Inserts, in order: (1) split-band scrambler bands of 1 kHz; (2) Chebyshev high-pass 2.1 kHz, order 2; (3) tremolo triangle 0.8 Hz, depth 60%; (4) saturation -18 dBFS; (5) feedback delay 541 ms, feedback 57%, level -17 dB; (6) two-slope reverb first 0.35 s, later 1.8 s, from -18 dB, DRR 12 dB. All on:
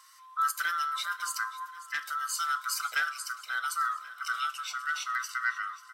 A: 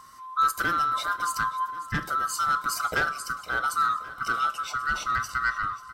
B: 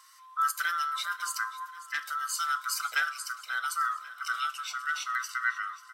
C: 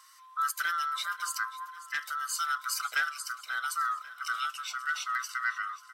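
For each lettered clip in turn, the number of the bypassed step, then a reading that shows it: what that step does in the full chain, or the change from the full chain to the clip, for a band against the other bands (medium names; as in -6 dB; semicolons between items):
2, 1 kHz band +6.0 dB; 4, distortion -26 dB; 6, echo-to-direct -10.5 dB to -15.5 dB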